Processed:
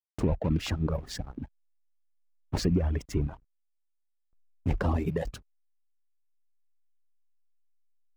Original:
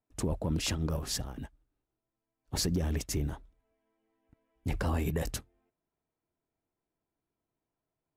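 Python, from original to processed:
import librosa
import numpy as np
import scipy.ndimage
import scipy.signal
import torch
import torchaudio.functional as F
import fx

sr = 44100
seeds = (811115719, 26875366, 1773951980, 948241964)

p1 = fx.rattle_buzz(x, sr, strikes_db=-36.0, level_db=-41.0)
p2 = fx.lowpass(p1, sr, hz=1700.0, slope=6)
p3 = fx.hum_notches(p2, sr, base_hz=60, count=2)
p4 = fx.rider(p3, sr, range_db=4, speed_s=2.0)
p5 = p3 + (p4 * librosa.db_to_amplitude(-0.5))
p6 = fx.backlash(p5, sr, play_db=-36.5)
y = fx.dereverb_blind(p6, sr, rt60_s=1.9)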